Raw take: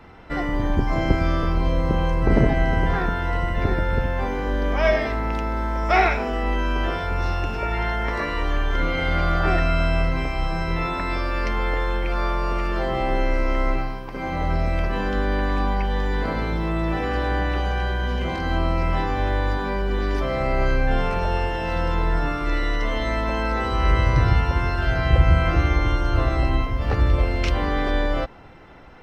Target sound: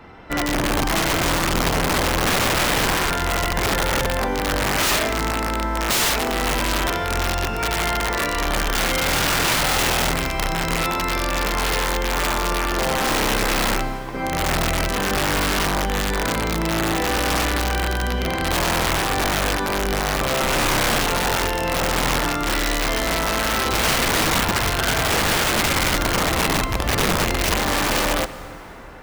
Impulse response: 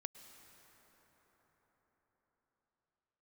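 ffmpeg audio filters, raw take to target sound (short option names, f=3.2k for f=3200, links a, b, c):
-filter_complex "[0:a]lowshelf=f=85:g=-6,aeval=exprs='(mod(7.94*val(0)+1,2)-1)/7.94':c=same,asplit=2[a][b];[1:a]atrim=start_sample=2205[c];[b][c]afir=irnorm=-1:irlink=0,volume=2.5dB[d];[a][d]amix=inputs=2:normalize=0,volume=-1.5dB"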